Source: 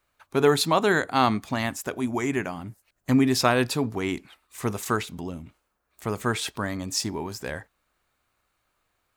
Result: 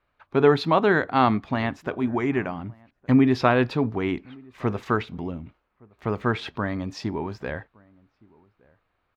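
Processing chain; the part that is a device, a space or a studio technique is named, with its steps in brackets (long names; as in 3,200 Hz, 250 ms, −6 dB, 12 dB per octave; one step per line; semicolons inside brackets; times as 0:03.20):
shout across a valley (high-frequency loss of the air 310 metres; slap from a distant wall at 200 metres, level −27 dB)
level +3 dB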